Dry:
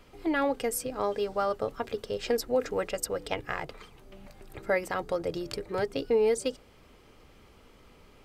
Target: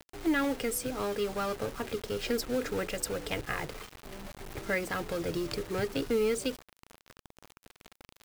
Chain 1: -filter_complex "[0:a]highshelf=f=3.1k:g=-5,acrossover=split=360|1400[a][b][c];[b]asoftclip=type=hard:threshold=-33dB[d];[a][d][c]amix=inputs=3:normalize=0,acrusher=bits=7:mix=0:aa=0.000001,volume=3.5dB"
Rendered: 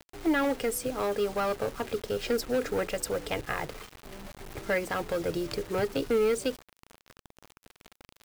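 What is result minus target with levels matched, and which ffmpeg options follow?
hard clip: distortion -5 dB
-filter_complex "[0:a]highshelf=f=3.1k:g=-5,acrossover=split=360|1400[a][b][c];[b]asoftclip=type=hard:threshold=-42dB[d];[a][d][c]amix=inputs=3:normalize=0,acrusher=bits=7:mix=0:aa=0.000001,volume=3.5dB"

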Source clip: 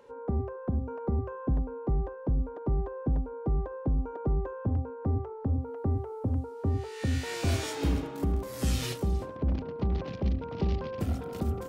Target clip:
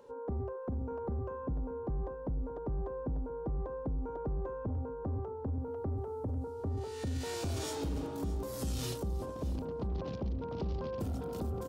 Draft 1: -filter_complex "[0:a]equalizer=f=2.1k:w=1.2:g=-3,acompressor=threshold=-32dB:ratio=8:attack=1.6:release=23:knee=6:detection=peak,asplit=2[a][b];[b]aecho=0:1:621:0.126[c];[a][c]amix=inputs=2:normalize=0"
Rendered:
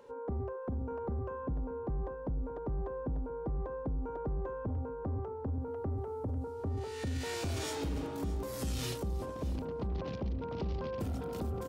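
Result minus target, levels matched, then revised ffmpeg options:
2000 Hz band +4.0 dB
-filter_complex "[0:a]equalizer=f=2.1k:w=1.2:g=-9,acompressor=threshold=-32dB:ratio=8:attack=1.6:release=23:knee=6:detection=peak,asplit=2[a][b];[b]aecho=0:1:621:0.126[c];[a][c]amix=inputs=2:normalize=0"

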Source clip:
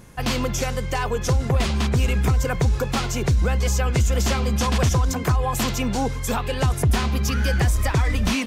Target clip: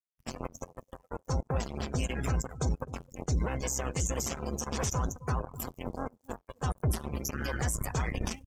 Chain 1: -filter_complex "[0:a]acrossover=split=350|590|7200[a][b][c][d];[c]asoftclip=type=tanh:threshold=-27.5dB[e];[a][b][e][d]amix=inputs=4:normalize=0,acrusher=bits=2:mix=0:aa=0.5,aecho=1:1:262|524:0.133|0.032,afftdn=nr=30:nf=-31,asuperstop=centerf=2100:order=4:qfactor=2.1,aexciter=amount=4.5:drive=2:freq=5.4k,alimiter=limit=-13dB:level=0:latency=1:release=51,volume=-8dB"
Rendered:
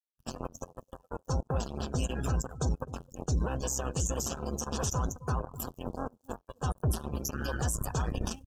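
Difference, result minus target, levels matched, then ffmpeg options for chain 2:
2000 Hz band -3.5 dB
-filter_complex "[0:a]acrossover=split=350|590|7200[a][b][c][d];[c]asoftclip=type=tanh:threshold=-27.5dB[e];[a][b][e][d]amix=inputs=4:normalize=0,acrusher=bits=2:mix=0:aa=0.5,aecho=1:1:262|524:0.133|0.032,afftdn=nr=30:nf=-31,aexciter=amount=4.5:drive=2:freq=5.4k,alimiter=limit=-13dB:level=0:latency=1:release=51,volume=-8dB"

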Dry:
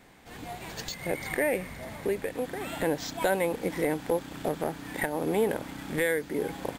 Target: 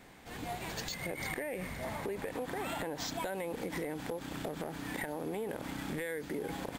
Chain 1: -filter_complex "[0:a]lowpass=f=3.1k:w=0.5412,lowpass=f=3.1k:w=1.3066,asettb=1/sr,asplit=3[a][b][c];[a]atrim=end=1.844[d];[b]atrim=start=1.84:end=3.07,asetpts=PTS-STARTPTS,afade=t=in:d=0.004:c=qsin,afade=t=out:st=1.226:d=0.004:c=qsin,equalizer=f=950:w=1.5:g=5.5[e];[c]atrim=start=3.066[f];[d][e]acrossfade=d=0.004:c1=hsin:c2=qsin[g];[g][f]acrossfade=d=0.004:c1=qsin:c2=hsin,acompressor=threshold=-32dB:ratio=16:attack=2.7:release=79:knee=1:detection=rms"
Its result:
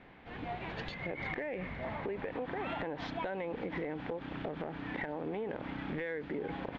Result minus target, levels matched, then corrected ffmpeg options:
4000 Hz band -5.5 dB
-filter_complex "[0:a]asettb=1/sr,asplit=3[a][b][c];[a]atrim=end=1.844[d];[b]atrim=start=1.84:end=3.07,asetpts=PTS-STARTPTS,afade=t=in:d=0.004:c=qsin,afade=t=out:st=1.226:d=0.004:c=qsin,equalizer=f=950:w=1.5:g=5.5[e];[c]atrim=start=3.066[f];[d][e]acrossfade=d=0.004:c1=hsin:c2=qsin[g];[g][f]acrossfade=d=0.004:c1=qsin:c2=hsin,acompressor=threshold=-32dB:ratio=16:attack=2.7:release=79:knee=1:detection=rms"

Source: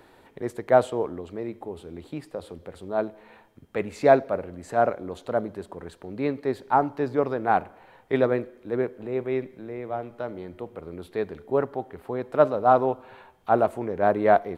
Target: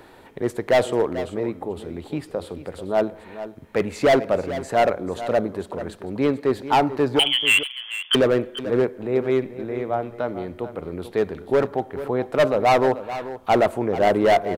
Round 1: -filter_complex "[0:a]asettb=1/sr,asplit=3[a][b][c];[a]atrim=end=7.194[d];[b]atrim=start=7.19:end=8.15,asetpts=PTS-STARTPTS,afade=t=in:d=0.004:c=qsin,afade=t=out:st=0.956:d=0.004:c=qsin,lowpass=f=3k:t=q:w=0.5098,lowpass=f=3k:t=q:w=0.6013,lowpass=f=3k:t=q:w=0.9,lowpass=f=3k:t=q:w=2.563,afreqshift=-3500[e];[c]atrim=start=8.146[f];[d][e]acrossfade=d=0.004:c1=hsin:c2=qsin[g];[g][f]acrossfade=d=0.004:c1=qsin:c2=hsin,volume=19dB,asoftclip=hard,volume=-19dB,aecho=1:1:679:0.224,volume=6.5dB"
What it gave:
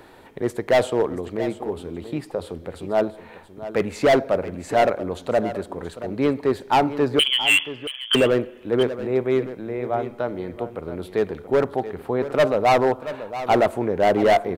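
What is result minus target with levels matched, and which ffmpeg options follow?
echo 0.24 s late
-filter_complex "[0:a]asettb=1/sr,asplit=3[a][b][c];[a]atrim=end=7.194[d];[b]atrim=start=7.19:end=8.15,asetpts=PTS-STARTPTS,afade=t=in:d=0.004:c=qsin,afade=t=out:st=0.956:d=0.004:c=qsin,lowpass=f=3k:t=q:w=0.5098,lowpass=f=3k:t=q:w=0.6013,lowpass=f=3k:t=q:w=0.9,lowpass=f=3k:t=q:w=2.563,afreqshift=-3500[e];[c]atrim=start=8.146[f];[d][e]acrossfade=d=0.004:c1=hsin:c2=qsin[g];[g][f]acrossfade=d=0.004:c1=qsin:c2=hsin,volume=19dB,asoftclip=hard,volume=-19dB,aecho=1:1:439:0.224,volume=6.5dB"

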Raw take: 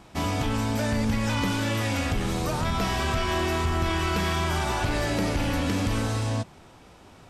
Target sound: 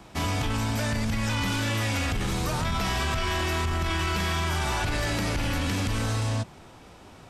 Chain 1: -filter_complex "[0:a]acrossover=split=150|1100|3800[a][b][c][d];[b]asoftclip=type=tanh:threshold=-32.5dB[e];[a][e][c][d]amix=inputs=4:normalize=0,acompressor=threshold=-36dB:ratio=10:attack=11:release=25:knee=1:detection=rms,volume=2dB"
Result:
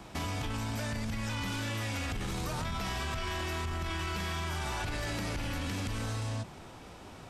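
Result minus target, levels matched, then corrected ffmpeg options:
compressor: peak gain reduction +8 dB
-filter_complex "[0:a]acrossover=split=150|1100|3800[a][b][c][d];[b]asoftclip=type=tanh:threshold=-32.5dB[e];[a][e][c][d]amix=inputs=4:normalize=0,acompressor=threshold=-27dB:ratio=10:attack=11:release=25:knee=1:detection=rms,volume=2dB"

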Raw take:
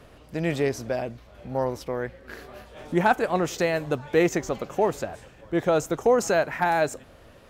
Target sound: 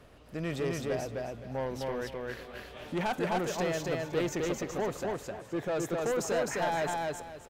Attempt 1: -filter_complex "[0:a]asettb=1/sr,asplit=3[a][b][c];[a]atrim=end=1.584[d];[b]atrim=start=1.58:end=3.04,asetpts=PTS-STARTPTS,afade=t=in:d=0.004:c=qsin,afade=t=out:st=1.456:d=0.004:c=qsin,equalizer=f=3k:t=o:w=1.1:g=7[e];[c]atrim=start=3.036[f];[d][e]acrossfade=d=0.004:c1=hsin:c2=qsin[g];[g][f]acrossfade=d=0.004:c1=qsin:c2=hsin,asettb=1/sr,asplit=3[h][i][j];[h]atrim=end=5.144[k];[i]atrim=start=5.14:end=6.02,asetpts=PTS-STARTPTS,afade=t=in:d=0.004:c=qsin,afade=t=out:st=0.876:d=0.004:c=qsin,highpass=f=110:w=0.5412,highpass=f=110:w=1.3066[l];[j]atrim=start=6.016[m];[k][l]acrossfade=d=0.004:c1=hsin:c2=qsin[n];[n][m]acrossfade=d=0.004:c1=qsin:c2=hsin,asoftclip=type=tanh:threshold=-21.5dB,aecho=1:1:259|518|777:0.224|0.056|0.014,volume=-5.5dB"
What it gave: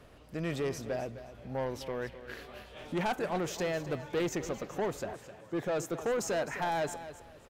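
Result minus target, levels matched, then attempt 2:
echo-to-direct -11 dB
-filter_complex "[0:a]asettb=1/sr,asplit=3[a][b][c];[a]atrim=end=1.584[d];[b]atrim=start=1.58:end=3.04,asetpts=PTS-STARTPTS,afade=t=in:d=0.004:c=qsin,afade=t=out:st=1.456:d=0.004:c=qsin,equalizer=f=3k:t=o:w=1.1:g=7[e];[c]atrim=start=3.036[f];[d][e]acrossfade=d=0.004:c1=hsin:c2=qsin[g];[g][f]acrossfade=d=0.004:c1=qsin:c2=hsin,asettb=1/sr,asplit=3[h][i][j];[h]atrim=end=5.144[k];[i]atrim=start=5.14:end=6.02,asetpts=PTS-STARTPTS,afade=t=in:d=0.004:c=qsin,afade=t=out:st=0.876:d=0.004:c=qsin,highpass=f=110:w=0.5412,highpass=f=110:w=1.3066[l];[j]atrim=start=6.016[m];[k][l]acrossfade=d=0.004:c1=hsin:c2=qsin[n];[n][m]acrossfade=d=0.004:c1=qsin:c2=hsin,asoftclip=type=tanh:threshold=-21.5dB,aecho=1:1:259|518|777|1036:0.794|0.199|0.0496|0.0124,volume=-5.5dB"

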